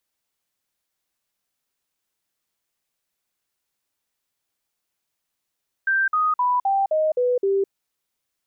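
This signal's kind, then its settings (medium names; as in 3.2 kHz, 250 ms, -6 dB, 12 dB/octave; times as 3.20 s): stepped sine 1.57 kHz down, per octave 3, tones 7, 0.21 s, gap 0.05 s -17 dBFS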